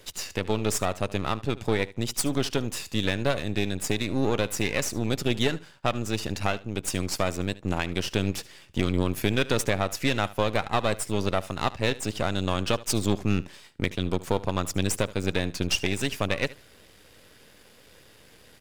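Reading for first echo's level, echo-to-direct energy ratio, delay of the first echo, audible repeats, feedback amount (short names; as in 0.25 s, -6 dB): -19.0 dB, -19.0 dB, 74 ms, 2, 17%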